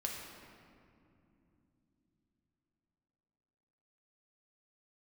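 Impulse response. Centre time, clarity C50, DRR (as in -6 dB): 86 ms, 2.0 dB, -1.0 dB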